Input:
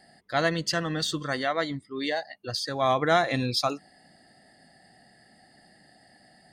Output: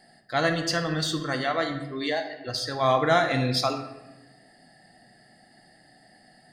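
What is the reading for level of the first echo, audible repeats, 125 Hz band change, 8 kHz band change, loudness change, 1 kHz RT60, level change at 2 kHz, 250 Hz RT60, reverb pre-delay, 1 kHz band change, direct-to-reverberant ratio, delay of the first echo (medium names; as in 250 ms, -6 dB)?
no echo, no echo, +3.0 dB, +0.5 dB, +1.5 dB, 0.90 s, +1.5 dB, 1.4 s, 3 ms, +1.5 dB, 4.5 dB, no echo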